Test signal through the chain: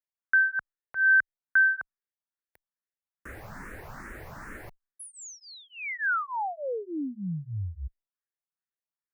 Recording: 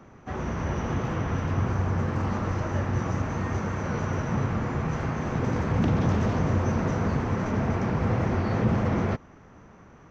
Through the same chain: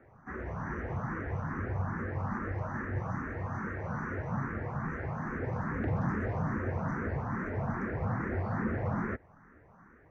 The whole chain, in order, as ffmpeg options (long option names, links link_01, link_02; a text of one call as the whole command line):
ffmpeg -i in.wav -filter_complex "[0:a]highshelf=frequency=2400:width_type=q:width=3:gain=-10.5,asplit=2[link_01][link_02];[link_02]afreqshift=2.4[link_03];[link_01][link_03]amix=inputs=2:normalize=1,volume=-5.5dB" out.wav